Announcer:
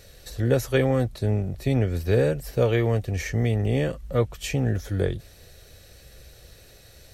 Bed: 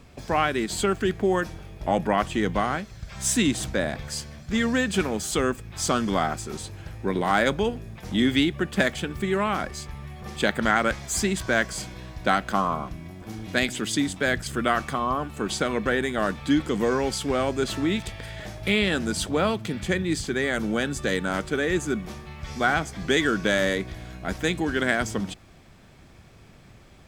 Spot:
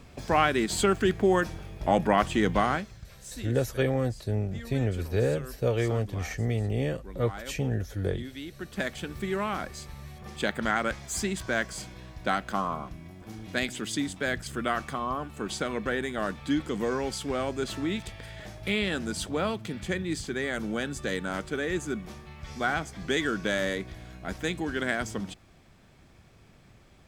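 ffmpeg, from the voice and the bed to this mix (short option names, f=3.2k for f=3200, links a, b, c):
-filter_complex "[0:a]adelay=3050,volume=-5dB[a];[1:a]volume=14dB,afade=t=out:st=2.71:d=0.49:silence=0.105925,afade=t=in:st=8.4:d=0.72:silence=0.199526[b];[a][b]amix=inputs=2:normalize=0"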